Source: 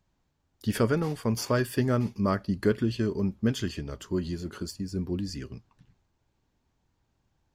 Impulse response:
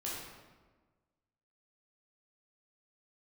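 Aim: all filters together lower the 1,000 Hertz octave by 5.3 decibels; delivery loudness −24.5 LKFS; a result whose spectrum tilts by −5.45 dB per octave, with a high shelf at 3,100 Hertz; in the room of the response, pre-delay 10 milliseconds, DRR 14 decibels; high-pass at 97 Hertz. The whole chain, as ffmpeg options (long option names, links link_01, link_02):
-filter_complex "[0:a]highpass=97,equalizer=frequency=1000:width_type=o:gain=-8,highshelf=frequency=3100:gain=5.5,asplit=2[link_01][link_02];[1:a]atrim=start_sample=2205,adelay=10[link_03];[link_02][link_03]afir=irnorm=-1:irlink=0,volume=-15.5dB[link_04];[link_01][link_04]amix=inputs=2:normalize=0,volume=5dB"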